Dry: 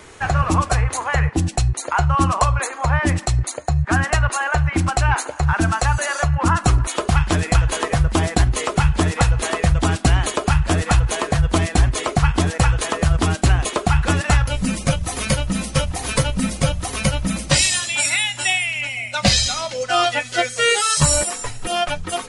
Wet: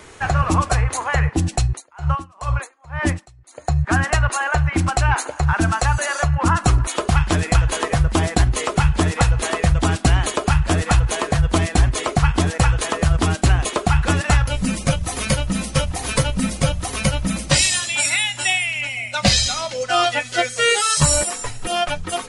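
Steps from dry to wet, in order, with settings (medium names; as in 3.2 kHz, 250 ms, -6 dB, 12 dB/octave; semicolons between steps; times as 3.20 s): 1.66–3.68 s: logarithmic tremolo 2.9 Hz -> 1.4 Hz, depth 31 dB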